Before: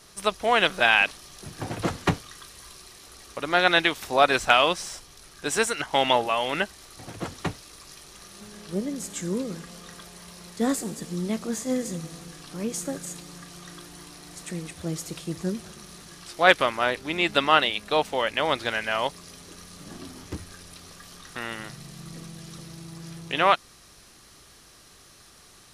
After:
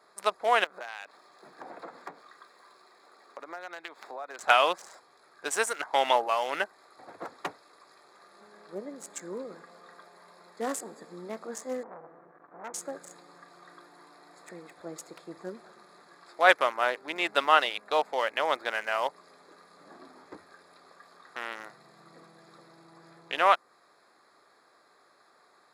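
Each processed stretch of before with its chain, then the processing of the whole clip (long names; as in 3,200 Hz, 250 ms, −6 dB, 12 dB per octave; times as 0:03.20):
0:00.64–0:04.39: running median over 3 samples + high-pass filter 150 Hz 24 dB per octave + downward compressor 5 to 1, threshold −34 dBFS
0:11.83–0:12.74: low-pass filter 1,700 Hz 24 dB per octave + saturating transformer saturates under 1,500 Hz
whole clip: adaptive Wiener filter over 15 samples; high-pass filter 550 Hz 12 dB per octave; dynamic equaliser 3,500 Hz, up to −6 dB, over −38 dBFS, Q 0.9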